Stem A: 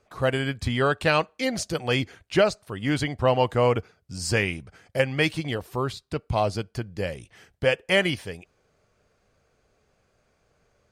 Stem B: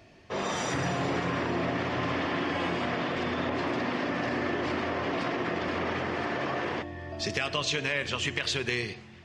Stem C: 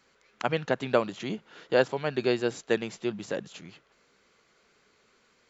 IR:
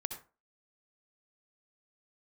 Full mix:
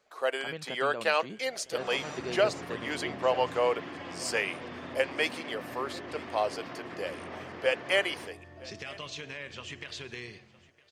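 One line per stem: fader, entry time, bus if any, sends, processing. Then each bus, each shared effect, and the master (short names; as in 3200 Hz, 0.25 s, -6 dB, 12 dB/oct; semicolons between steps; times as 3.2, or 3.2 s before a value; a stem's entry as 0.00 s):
-4.5 dB, 0.00 s, no send, echo send -22 dB, HPF 410 Hz 24 dB/oct
-11.5 dB, 1.45 s, no send, echo send -22.5 dB, dry
-10.0 dB, 0.00 s, no send, echo send -20.5 dB, limiter -16 dBFS, peak gain reduction 7.5 dB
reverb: off
echo: feedback echo 0.96 s, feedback 26%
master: dry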